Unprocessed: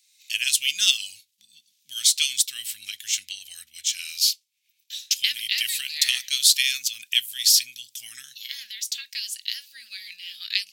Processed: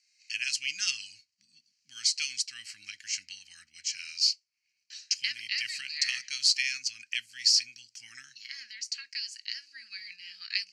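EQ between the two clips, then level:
dynamic equaliser 850 Hz, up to −4 dB, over −43 dBFS, Q 1.1
loudspeaker in its box 100–5,800 Hz, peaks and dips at 300 Hz +4 dB, 740 Hz +3 dB, 4,500 Hz +9 dB
phaser with its sweep stopped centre 1,500 Hz, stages 4
0.0 dB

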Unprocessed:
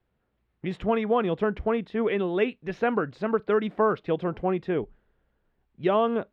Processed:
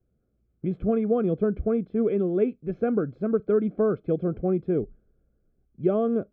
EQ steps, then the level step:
moving average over 47 samples
+4.5 dB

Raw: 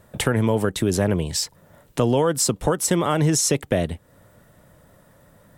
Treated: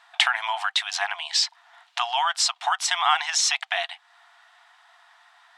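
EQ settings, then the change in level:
linear-phase brick-wall high-pass 670 Hz
head-to-tape spacing loss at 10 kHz 21 dB
parametric band 3,800 Hz +14 dB 2.1 octaves
+3.5 dB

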